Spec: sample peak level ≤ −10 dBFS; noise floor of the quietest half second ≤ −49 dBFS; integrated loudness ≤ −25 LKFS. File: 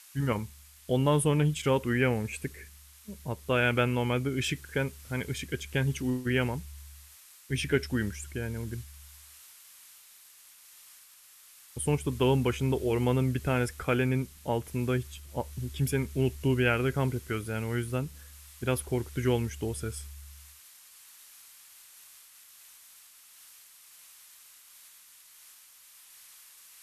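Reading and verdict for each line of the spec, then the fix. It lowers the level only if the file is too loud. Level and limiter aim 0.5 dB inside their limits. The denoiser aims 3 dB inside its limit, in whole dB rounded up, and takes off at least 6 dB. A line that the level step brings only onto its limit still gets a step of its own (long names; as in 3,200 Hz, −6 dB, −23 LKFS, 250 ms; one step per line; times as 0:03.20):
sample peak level −13.0 dBFS: in spec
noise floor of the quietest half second −55 dBFS: in spec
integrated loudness −30.0 LKFS: in spec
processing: no processing needed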